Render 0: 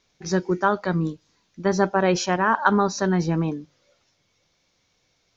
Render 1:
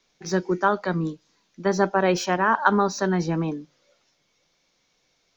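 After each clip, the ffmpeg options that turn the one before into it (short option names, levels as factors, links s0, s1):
-filter_complex "[0:a]equalizer=f=81:w=1.4:g=-14,acrossover=split=180|640|3500[s0][s1][s2][s3];[s3]asoftclip=type=tanh:threshold=0.0398[s4];[s0][s1][s2][s4]amix=inputs=4:normalize=0"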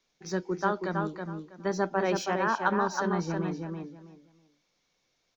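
-filter_complex "[0:a]asplit=2[s0][s1];[s1]adelay=323,lowpass=f=3700:p=1,volume=0.596,asplit=2[s2][s3];[s3]adelay=323,lowpass=f=3700:p=1,volume=0.22,asplit=2[s4][s5];[s5]adelay=323,lowpass=f=3700:p=1,volume=0.22[s6];[s0][s2][s4][s6]amix=inputs=4:normalize=0,volume=0.422"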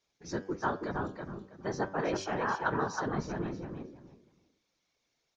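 -af "afftfilt=real='hypot(re,im)*cos(2*PI*random(0))':imag='hypot(re,im)*sin(2*PI*random(1))':win_size=512:overlap=0.75,aresample=22050,aresample=44100,bandreject=f=96.45:t=h:w=4,bandreject=f=192.9:t=h:w=4,bandreject=f=289.35:t=h:w=4,bandreject=f=385.8:t=h:w=4,bandreject=f=482.25:t=h:w=4,bandreject=f=578.7:t=h:w=4,bandreject=f=675.15:t=h:w=4,bandreject=f=771.6:t=h:w=4,bandreject=f=868.05:t=h:w=4,bandreject=f=964.5:t=h:w=4,bandreject=f=1060.95:t=h:w=4,bandreject=f=1157.4:t=h:w=4,bandreject=f=1253.85:t=h:w=4,bandreject=f=1350.3:t=h:w=4,bandreject=f=1446.75:t=h:w=4,bandreject=f=1543.2:t=h:w=4,bandreject=f=1639.65:t=h:w=4,bandreject=f=1736.1:t=h:w=4,bandreject=f=1832.55:t=h:w=4,bandreject=f=1929:t=h:w=4,bandreject=f=2025.45:t=h:w=4,bandreject=f=2121.9:t=h:w=4,bandreject=f=2218.35:t=h:w=4,bandreject=f=2314.8:t=h:w=4,bandreject=f=2411.25:t=h:w=4,bandreject=f=2507.7:t=h:w=4,bandreject=f=2604.15:t=h:w=4,bandreject=f=2700.6:t=h:w=4,bandreject=f=2797.05:t=h:w=4,bandreject=f=2893.5:t=h:w=4,bandreject=f=2989.95:t=h:w=4,bandreject=f=3086.4:t=h:w=4,bandreject=f=3182.85:t=h:w=4,bandreject=f=3279.3:t=h:w=4,bandreject=f=3375.75:t=h:w=4,bandreject=f=3472.2:t=h:w=4,bandreject=f=3568.65:t=h:w=4,bandreject=f=3665.1:t=h:w=4,volume=1.19"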